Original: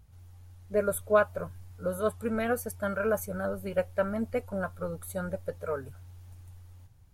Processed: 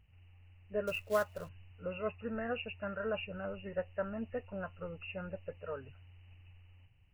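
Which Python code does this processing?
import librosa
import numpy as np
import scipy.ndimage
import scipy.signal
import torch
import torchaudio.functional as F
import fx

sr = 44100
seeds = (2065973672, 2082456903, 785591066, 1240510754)

y = fx.freq_compress(x, sr, knee_hz=1700.0, ratio=4.0)
y = fx.quant_float(y, sr, bits=2, at=(0.87, 1.49))
y = y * librosa.db_to_amplitude(-8.5)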